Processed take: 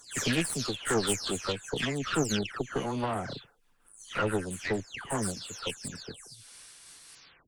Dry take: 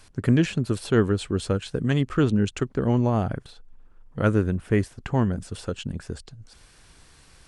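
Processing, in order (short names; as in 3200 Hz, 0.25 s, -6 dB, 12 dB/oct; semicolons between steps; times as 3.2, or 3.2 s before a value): spectral delay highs early, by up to 0.327 s; tilt +3.5 dB/oct; added harmonics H 4 -13 dB, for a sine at -13 dBFS; noise-modulated level, depth 55%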